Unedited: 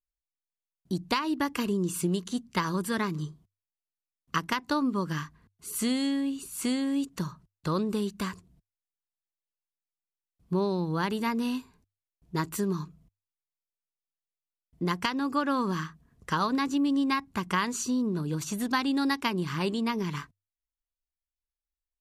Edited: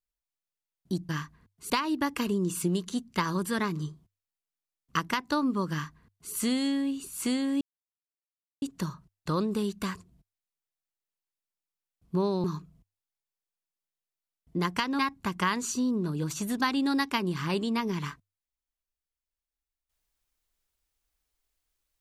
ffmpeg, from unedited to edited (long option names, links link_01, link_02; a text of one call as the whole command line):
ffmpeg -i in.wav -filter_complex "[0:a]asplit=6[link_01][link_02][link_03][link_04][link_05][link_06];[link_01]atrim=end=1.092[link_07];[link_02]atrim=start=5.098:end=5.712[link_08];[link_03]atrim=start=1.088:end=7,asetpts=PTS-STARTPTS,afade=type=out:start_time=5.908:duration=0.004:curve=hsin,apad=pad_dur=1.01[link_09];[link_04]atrim=start=7:end=10.822,asetpts=PTS-STARTPTS,afade=type=in:duration=0.004:curve=hsin[link_10];[link_05]atrim=start=12.698:end=15.252[link_11];[link_06]atrim=start=17.098[link_12];[link_07][link_08]acrossfade=duration=0.004:curve1=hsin:curve2=hsin[link_13];[link_09][link_10]concat=n=2:v=0:a=1[link_14];[link_13][link_14]acrossfade=duration=0.004:curve1=hsin:curve2=hsin[link_15];[link_15][link_11]acrossfade=duration=0.004:curve1=hsin:curve2=hsin[link_16];[link_16][link_12]acrossfade=duration=0.004:curve1=hsin:curve2=hsin" out.wav